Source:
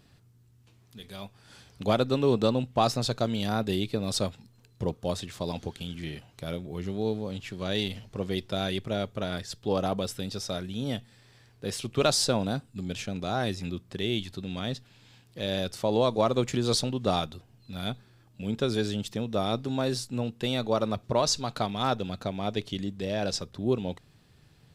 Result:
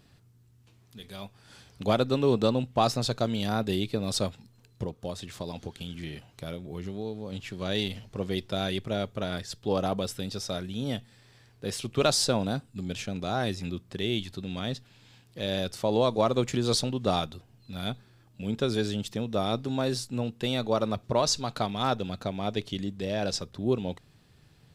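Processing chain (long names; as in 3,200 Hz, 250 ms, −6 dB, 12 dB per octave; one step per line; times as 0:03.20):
0:04.83–0:07.33: downward compressor 2.5 to 1, threshold −33 dBFS, peak gain reduction 7 dB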